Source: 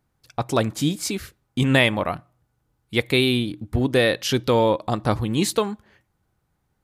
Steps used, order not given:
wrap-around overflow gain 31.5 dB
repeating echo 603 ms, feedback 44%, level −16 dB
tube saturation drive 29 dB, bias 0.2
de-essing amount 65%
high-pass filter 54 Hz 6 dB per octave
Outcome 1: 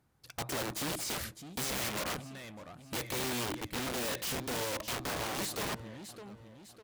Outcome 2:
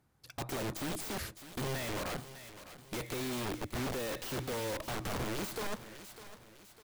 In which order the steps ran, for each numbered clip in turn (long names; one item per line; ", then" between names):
tube saturation, then repeating echo, then de-essing, then wrap-around overflow, then high-pass filter
high-pass filter, then tube saturation, then wrap-around overflow, then repeating echo, then de-essing